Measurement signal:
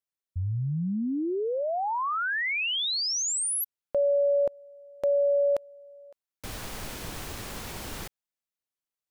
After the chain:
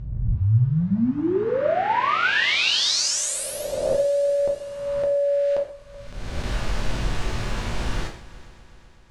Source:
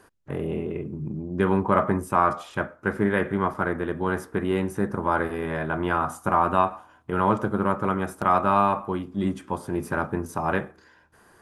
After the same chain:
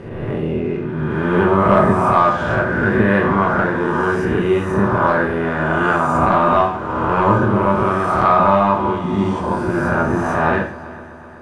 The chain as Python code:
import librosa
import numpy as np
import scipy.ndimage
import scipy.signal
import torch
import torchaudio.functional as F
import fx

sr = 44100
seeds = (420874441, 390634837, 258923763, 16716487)

y = fx.spec_swells(x, sr, rise_s=1.57)
y = fx.low_shelf(y, sr, hz=70.0, db=11.5)
y = fx.leveller(y, sr, passes=1)
y = fx.air_absorb(y, sr, metres=93.0)
y = fx.echo_heads(y, sr, ms=126, heads='first and third', feedback_pct=67, wet_db=-20.5)
y = fx.rev_gated(y, sr, seeds[0], gate_ms=170, shape='falling', drr_db=0.5)
y = y * 10.0 ** (-1.0 / 20.0)